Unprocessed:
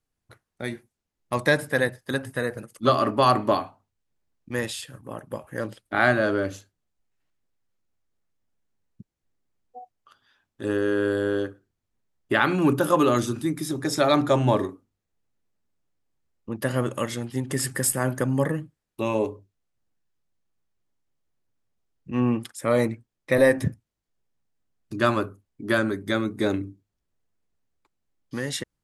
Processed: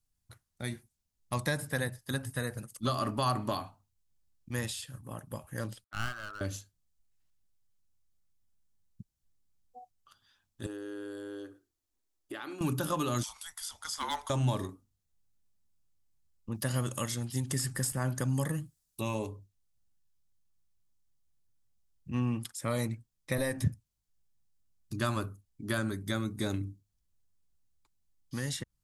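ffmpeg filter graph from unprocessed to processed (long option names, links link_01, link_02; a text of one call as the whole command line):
ffmpeg -i in.wav -filter_complex "[0:a]asettb=1/sr,asplit=3[link_01][link_02][link_03];[link_01]atrim=end=5.844[link_04];[link_02]atrim=start=5.84:end=6.41,asetpts=PTS-STARTPTS,afade=type=in:duration=0.004:curve=qsin,afade=type=out:start_time=0.566:duration=0.004:curve=qsin,bandpass=frequency=1300:width_type=q:width=4.8,aeval=exprs='clip(val(0),-1,0.0224)':channel_layout=same[link_05];[link_03]atrim=start=6.406[link_06];[link_04][link_05]acrossfade=duration=0.004:curve1=hsin:curve2=qsin[link_07];[link_07][link_06]acrossfade=duration=0.004:curve1=qsin:curve2=hsin,asettb=1/sr,asplit=3[link_08][link_09][link_10];[link_08]atrim=end=10.664[link_11];[link_09]atrim=start=10.66:end=12.61,asetpts=PTS-STARTPTS,afade=type=in:duration=0.004:curve=qsin,afade=type=out:start_time=1.946:duration=0.004:curve=qsin,acompressor=threshold=-38dB:ratio=2.5:attack=3.2:release=140:knee=1:detection=peak,lowshelf=frequency=230:width_type=q:width=3:gain=-10.5[link_12];[link_10]atrim=start=12.606[link_13];[link_11][link_12]acrossfade=duration=0.004:curve1=hsin:curve2=qsin[link_14];[link_14][link_13]acrossfade=duration=0.004:curve1=qsin:curve2=hsin,asettb=1/sr,asplit=3[link_15][link_16][link_17];[link_15]atrim=end=13.234[link_18];[link_16]atrim=start=13.23:end=14.3,asetpts=PTS-STARTPTS,afade=type=in:duration=0.004:curve=qsin,afade=type=out:start_time=1.066:duration=0.004:curve=qsin,highpass=frequency=1000:width=0.5412,highpass=frequency=1000:width=1.3066,afreqshift=-320,asoftclip=type=hard:threshold=-17.5dB[link_19];[link_17]atrim=start=14.296[link_20];[link_18][link_19]acrossfade=duration=0.004:curve1=hsin:curve2=qsin[link_21];[link_21][link_20]acrossfade=duration=0.004:curve1=qsin:curve2=hsin,asettb=1/sr,asplit=3[link_22][link_23][link_24];[link_22]atrim=end=16.544[link_25];[link_23]atrim=start=16.54:end=19.01,asetpts=PTS-STARTPTS,afade=type=in:duration=0.004:curve=qsin,afade=type=out:start_time=2.466:duration=0.004:curve=qsin,bass=frequency=250:gain=-1,treble=frequency=4000:gain=9,asoftclip=type=hard:threshold=-4.5dB[link_26];[link_24]atrim=start=19.006[link_27];[link_25][link_26]acrossfade=duration=0.004:curve1=hsin:curve2=qsin[link_28];[link_28][link_27]acrossfade=duration=0.004:curve1=qsin:curve2=hsin,equalizer=frequency=2000:width=0.71:gain=-9,acrossover=split=2200|5800[link_29][link_30][link_31];[link_29]acompressor=threshold=-22dB:ratio=4[link_32];[link_30]acompressor=threshold=-46dB:ratio=4[link_33];[link_31]acompressor=threshold=-47dB:ratio=4[link_34];[link_32][link_33][link_34]amix=inputs=3:normalize=0,equalizer=frequency=420:width=0.55:gain=-14.5,volume=4dB" out.wav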